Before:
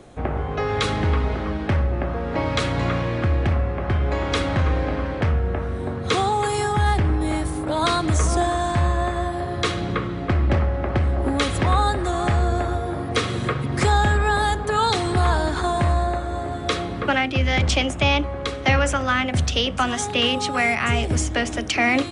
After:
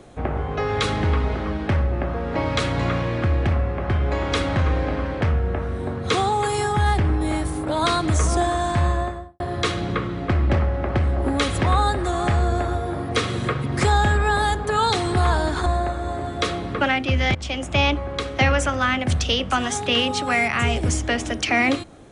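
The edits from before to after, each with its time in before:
0:08.89–0:09.40: fade out and dull
0:15.66–0:15.93: remove
0:17.62–0:18.07: fade in, from −17.5 dB

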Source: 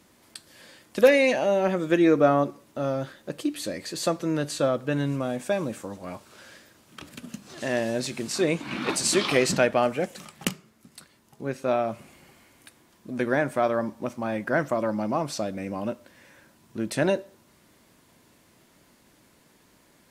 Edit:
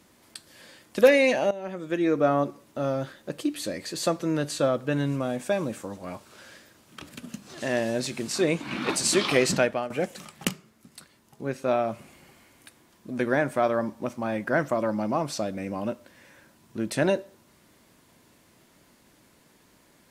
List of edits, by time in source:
0:01.51–0:02.63: fade in, from −16 dB
0:09.56–0:09.90: fade out, to −14 dB

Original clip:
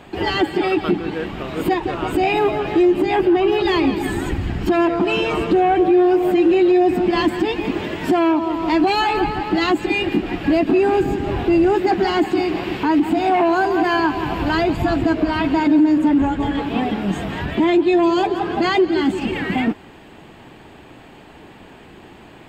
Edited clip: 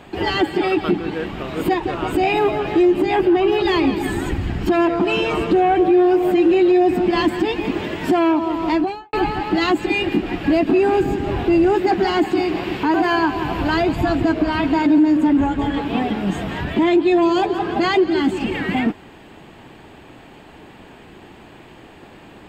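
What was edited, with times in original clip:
0:08.64–0:09.13: fade out and dull
0:12.94–0:13.75: remove

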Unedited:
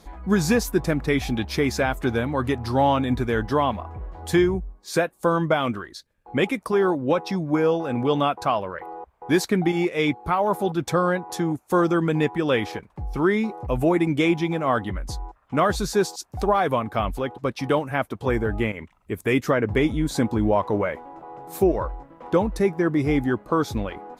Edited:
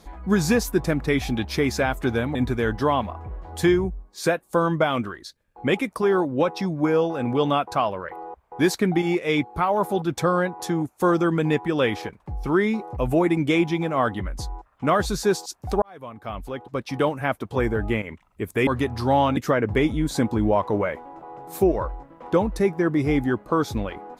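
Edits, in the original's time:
0:02.35–0:03.05: move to 0:19.37
0:16.52–0:17.80: fade in

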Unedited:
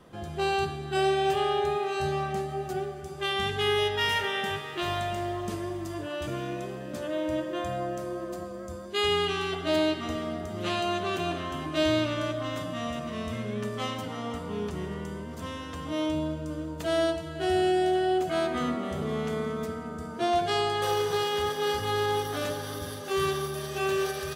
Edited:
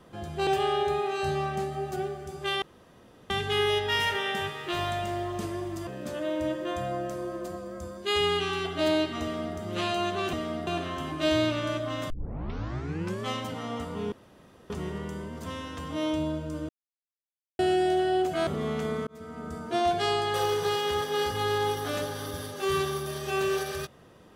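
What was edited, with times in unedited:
0:00.47–0:01.24: remove
0:03.39: splice in room tone 0.68 s
0:05.96–0:06.75: remove
0:10.10–0:10.44: duplicate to 0:11.21
0:12.64: tape start 1.14 s
0:14.66: splice in room tone 0.58 s
0:16.65–0:17.55: silence
0:18.43–0:18.95: remove
0:19.55–0:19.96: fade in

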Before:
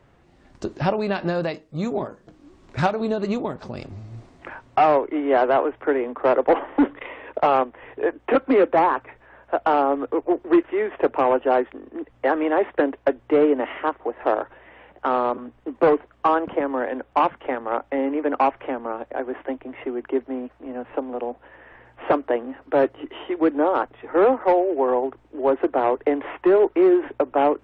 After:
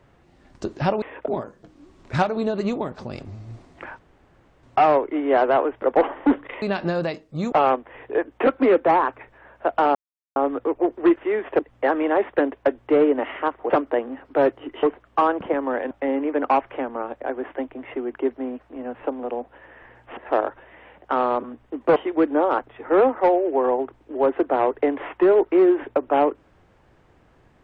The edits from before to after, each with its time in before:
0:01.02–0:01.92: swap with 0:07.14–0:07.40
0:04.63: splice in room tone 0.64 s
0:05.82–0:06.34: remove
0:09.83: splice in silence 0.41 s
0:11.06–0:12.00: remove
0:14.11–0:15.90: swap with 0:22.07–0:23.20
0:16.98–0:17.81: remove

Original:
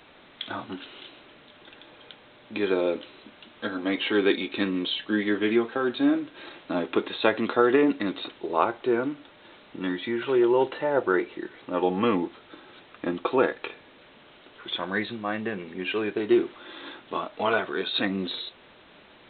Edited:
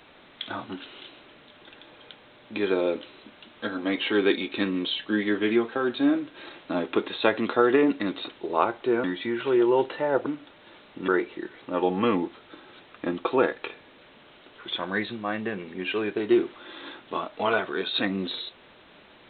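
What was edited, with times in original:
0:09.04–0:09.86: move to 0:11.08

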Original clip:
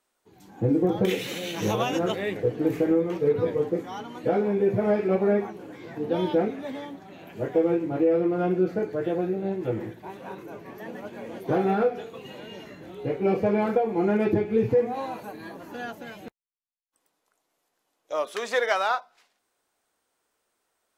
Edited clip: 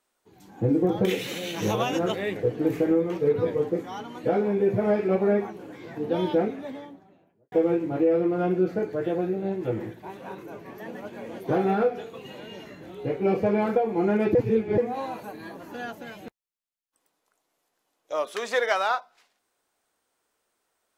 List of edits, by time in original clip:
0:06.36–0:07.52: fade out and dull
0:14.35–0:14.78: reverse

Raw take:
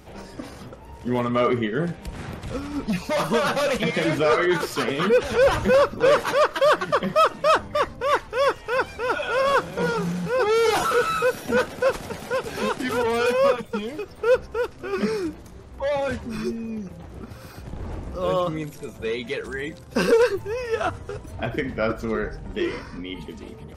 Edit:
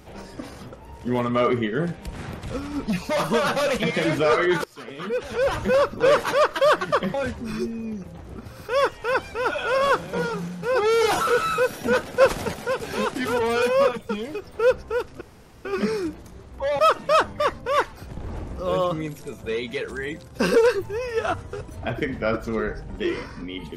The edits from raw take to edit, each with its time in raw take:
0:04.64–0:06.11: fade in, from −22.5 dB
0:07.14–0:08.32: swap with 0:15.99–0:17.53
0:09.65–0:10.27: fade out, to −8 dB
0:11.84–0:12.18: clip gain +5 dB
0:14.85: splice in room tone 0.44 s

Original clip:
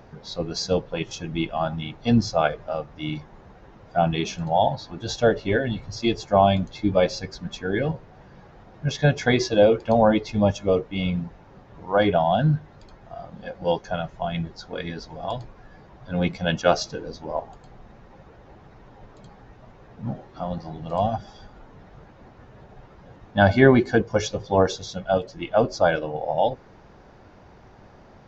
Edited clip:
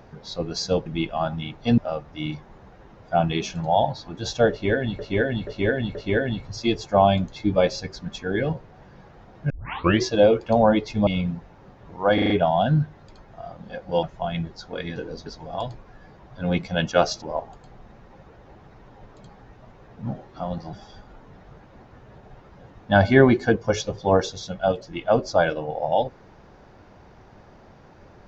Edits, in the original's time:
0:00.86–0:01.26: remove
0:02.18–0:02.61: remove
0:05.34–0:05.82: repeat, 4 plays
0:08.89: tape start 0.52 s
0:10.46–0:10.96: remove
0:12.03: stutter 0.04 s, 5 plays
0:13.76–0:14.03: remove
0:16.92–0:17.22: move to 0:14.96
0:20.73–0:21.19: remove

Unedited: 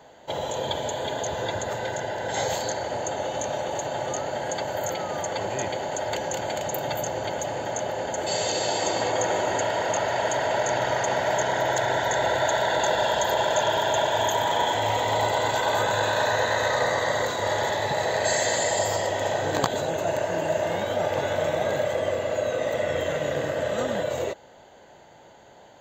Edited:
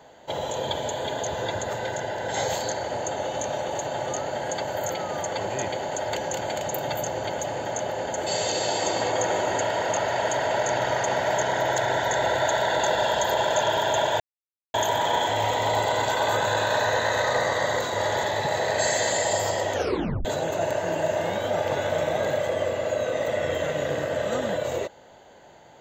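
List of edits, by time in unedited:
0:14.20: splice in silence 0.54 s
0:19.19: tape stop 0.52 s

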